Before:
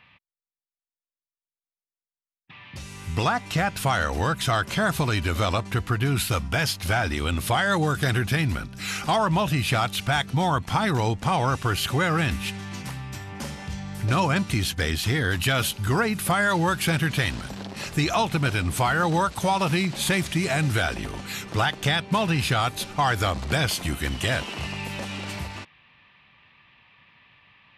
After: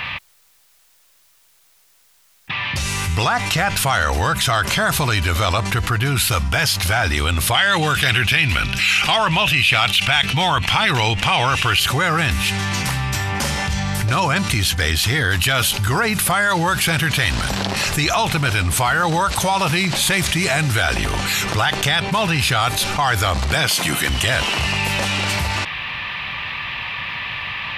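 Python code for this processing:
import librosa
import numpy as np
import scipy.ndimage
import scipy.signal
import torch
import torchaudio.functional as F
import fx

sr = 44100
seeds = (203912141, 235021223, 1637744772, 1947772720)

y = fx.peak_eq(x, sr, hz=2700.0, db=14.0, octaves=0.95, at=(7.54, 11.8))
y = fx.highpass(y, sr, hz=130.0, slope=24, at=(23.54, 24.09))
y = fx.peak_eq(y, sr, hz=250.0, db=-8.5, octaves=2.3)
y = fx.env_flatten(y, sr, amount_pct=70)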